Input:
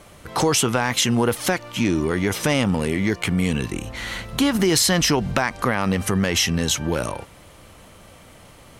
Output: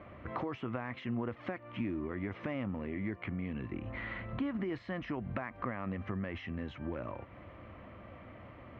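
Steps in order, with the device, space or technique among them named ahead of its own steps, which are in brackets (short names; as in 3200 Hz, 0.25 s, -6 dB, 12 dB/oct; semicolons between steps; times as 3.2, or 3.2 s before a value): bass amplifier (compressor 4:1, threshold -33 dBFS, peak gain reduction 15 dB; speaker cabinet 71–2000 Hz, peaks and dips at 160 Hz -9 dB, 440 Hz -8 dB, 850 Hz -8 dB, 1500 Hz -7 dB)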